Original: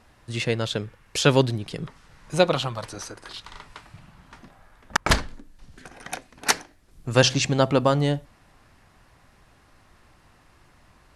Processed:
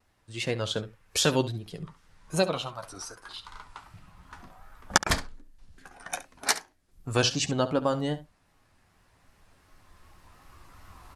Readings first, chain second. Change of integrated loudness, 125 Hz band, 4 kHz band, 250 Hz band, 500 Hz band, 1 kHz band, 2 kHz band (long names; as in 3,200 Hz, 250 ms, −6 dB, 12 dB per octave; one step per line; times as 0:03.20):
−5.0 dB, −8.0 dB, −3.5 dB, −5.5 dB, −6.0 dB, −5.0 dB, −5.0 dB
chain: camcorder AGC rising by 5 dB per second
noise reduction from a noise print of the clip's start 7 dB
high-shelf EQ 5,600 Hz +4.5 dB
pitch vibrato 2.6 Hz 81 cents
on a send: ambience of single reflections 11 ms −9.5 dB, 69 ms −15 dB
on the sum: level −7 dB